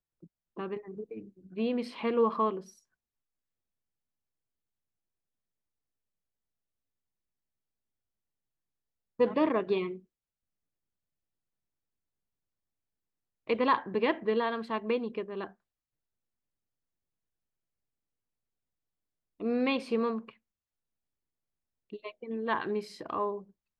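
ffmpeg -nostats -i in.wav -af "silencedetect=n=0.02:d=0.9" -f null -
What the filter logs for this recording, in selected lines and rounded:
silence_start: 2.59
silence_end: 9.20 | silence_duration: 6.61
silence_start: 9.93
silence_end: 13.49 | silence_duration: 3.56
silence_start: 15.45
silence_end: 19.41 | silence_duration: 3.96
silence_start: 20.29
silence_end: 21.93 | silence_duration: 1.64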